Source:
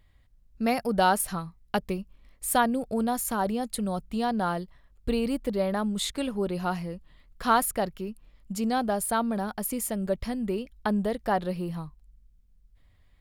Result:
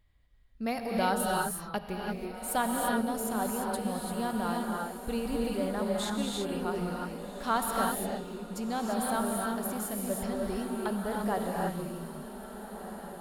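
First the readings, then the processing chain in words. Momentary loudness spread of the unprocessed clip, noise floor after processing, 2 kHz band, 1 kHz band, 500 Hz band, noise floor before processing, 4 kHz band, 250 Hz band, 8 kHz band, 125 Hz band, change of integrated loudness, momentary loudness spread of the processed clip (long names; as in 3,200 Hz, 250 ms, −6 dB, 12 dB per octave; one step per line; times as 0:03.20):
11 LU, −45 dBFS, −2.5 dB, −3.5 dB, −3.0 dB, −60 dBFS, −3.0 dB, −3.0 dB, −3.0 dB, −4.0 dB, −3.5 dB, 9 LU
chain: feedback delay with all-pass diffusion 1,596 ms, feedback 53%, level −11 dB
reverb whose tail is shaped and stops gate 370 ms rising, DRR −0.5 dB
level −7 dB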